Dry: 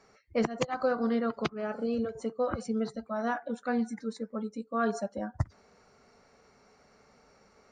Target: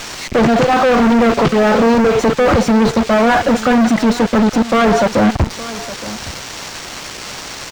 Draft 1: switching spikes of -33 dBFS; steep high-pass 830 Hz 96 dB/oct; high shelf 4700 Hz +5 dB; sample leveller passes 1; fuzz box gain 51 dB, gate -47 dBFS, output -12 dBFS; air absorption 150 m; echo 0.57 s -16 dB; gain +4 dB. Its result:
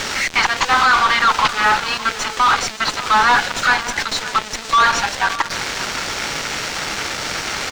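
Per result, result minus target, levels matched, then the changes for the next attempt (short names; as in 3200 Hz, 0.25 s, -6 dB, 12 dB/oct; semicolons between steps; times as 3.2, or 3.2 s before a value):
echo 0.297 s early; 1000 Hz band +5.0 dB; switching spikes: distortion -7 dB
change: echo 0.867 s -16 dB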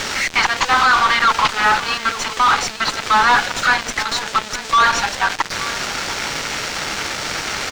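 1000 Hz band +5.0 dB; switching spikes: distortion -7 dB
remove: steep high-pass 830 Hz 96 dB/oct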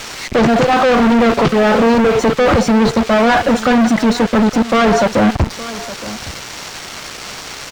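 switching spikes: distortion -7 dB
change: switching spikes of -26 dBFS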